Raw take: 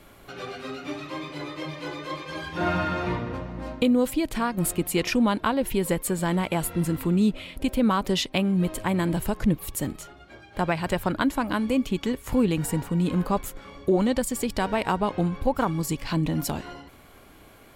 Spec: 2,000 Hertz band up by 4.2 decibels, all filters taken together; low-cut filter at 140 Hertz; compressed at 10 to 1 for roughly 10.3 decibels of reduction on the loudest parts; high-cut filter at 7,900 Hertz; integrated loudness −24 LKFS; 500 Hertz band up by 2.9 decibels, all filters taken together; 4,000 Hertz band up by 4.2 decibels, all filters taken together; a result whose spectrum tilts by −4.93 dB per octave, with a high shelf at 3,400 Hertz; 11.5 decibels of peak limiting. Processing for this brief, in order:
high-pass filter 140 Hz
low-pass filter 7,900 Hz
parametric band 500 Hz +3.5 dB
parametric band 2,000 Hz +5 dB
high-shelf EQ 3,400 Hz −3.5 dB
parametric band 4,000 Hz +6 dB
downward compressor 10 to 1, threshold −26 dBFS
level +10 dB
brickwall limiter −13.5 dBFS

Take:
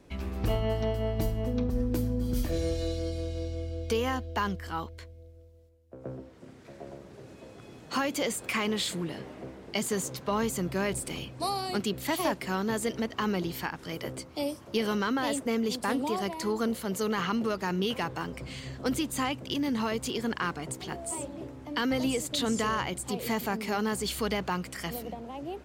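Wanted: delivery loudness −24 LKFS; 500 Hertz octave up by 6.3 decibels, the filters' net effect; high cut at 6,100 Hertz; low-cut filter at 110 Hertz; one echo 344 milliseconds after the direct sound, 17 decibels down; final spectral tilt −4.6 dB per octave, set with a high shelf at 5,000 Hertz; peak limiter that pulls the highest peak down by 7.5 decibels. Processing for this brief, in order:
high-pass filter 110 Hz
low-pass filter 6,100 Hz
parametric band 500 Hz +7.5 dB
high-shelf EQ 5,000 Hz +6 dB
brickwall limiter −19.5 dBFS
single-tap delay 344 ms −17 dB
level +6.5 dB

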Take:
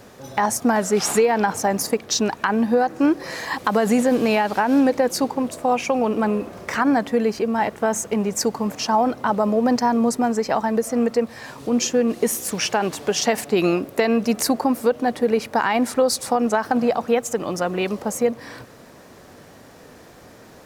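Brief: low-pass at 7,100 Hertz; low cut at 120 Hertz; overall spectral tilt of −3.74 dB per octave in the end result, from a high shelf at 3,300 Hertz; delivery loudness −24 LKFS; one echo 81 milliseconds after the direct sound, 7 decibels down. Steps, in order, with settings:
high-pass filter 120 Hz
low-pass filter 7,100 Hz
high-shelf EQ 3,300 Hz +3 dB
single-tap delay 81 ms −7 dB
level −4 dB

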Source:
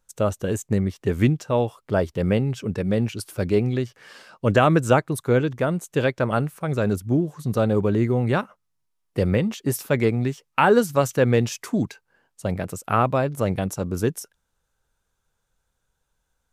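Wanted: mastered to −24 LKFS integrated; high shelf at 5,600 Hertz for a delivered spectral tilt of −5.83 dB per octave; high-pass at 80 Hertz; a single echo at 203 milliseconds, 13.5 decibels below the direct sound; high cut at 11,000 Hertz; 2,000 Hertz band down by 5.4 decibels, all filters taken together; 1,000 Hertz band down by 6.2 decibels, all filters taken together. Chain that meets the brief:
high-pass filter 80 Hz
low-pass filter 11,000 Hz
parametric band 1,000 Hz −7.5 dB
parametric band 2,000 Hz −5.5 dB
high-shelf EQ 5,600 Hz +8 dB
single-tap delay 203 ms −13.5 dB

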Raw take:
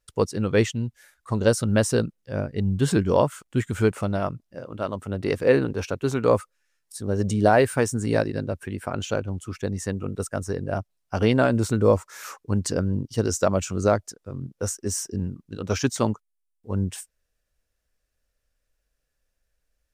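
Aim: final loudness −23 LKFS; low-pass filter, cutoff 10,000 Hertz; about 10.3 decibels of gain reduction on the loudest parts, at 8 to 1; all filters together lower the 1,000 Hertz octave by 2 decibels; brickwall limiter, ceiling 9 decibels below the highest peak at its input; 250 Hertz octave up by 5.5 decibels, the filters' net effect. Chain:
low-pass filter 10,000 Hz
parametric band 250 Hz +7 dB
parametric band 1,000 Hz −3.5 dB
downward compressor 8 to 1, threshold −22 dBFS
level +8 dB
brickwall limiter −11 dBFS

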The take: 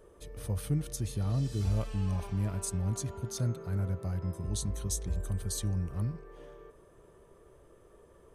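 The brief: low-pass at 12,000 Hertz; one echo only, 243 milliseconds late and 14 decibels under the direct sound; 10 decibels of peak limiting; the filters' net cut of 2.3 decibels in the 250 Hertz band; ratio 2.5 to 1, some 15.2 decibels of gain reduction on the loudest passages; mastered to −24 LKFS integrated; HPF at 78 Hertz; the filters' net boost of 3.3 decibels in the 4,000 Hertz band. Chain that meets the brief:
high-pass filter 78 Hz
low-pass filter 12,000 Hz
parametric band 250 Hz −3.5 dB
parametric band 4,000 Hz +4 dB
downward compressor 2.5 to 1, threshold −52 dBFS
brickwall limiter −44 dBFS
single-tap delay 243 ms −14 dB
level +29.5 dB

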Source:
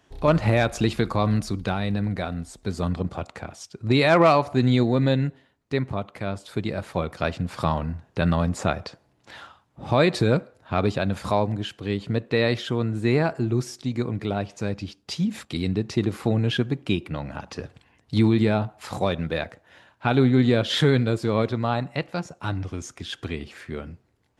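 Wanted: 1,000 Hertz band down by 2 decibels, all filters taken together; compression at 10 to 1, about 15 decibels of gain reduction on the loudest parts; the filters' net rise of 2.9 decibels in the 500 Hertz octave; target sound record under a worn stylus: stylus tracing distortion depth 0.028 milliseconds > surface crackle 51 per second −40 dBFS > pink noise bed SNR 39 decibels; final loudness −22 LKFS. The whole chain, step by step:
parametric band 500 Hz +5 dB
parametric band 1,000 Hz −5 dB
downward compressor 10 to 1, threshold −28 dBFS
stylus tracing distortion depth 0.028 ms
surface crackle 51 per second −40 dBFS
pink noise bed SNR 39 dB
level +12.5 dB

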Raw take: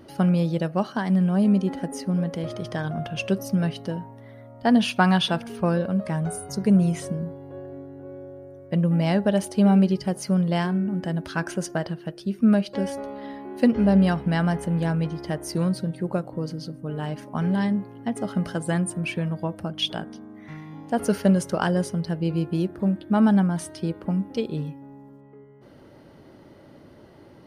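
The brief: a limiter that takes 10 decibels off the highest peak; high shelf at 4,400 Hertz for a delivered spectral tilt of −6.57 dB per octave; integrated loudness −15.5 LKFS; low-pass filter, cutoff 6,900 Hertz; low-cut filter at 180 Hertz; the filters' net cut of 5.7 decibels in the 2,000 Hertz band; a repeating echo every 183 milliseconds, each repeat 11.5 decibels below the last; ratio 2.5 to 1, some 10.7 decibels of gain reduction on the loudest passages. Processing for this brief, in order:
high-pass filter 180 Hz
low-pass filter 6,900 Hz
parametric band 2,000 Hz −7.5 dB
high-shelf EQ 4,400 Hz −4 dB
downward compressor 2.5 to 1, threshold −32 dBFS
brickwall limiter −25 dBFS
repeating echo 183 ms, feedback 27%, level −11.5 dB
level +20 dB

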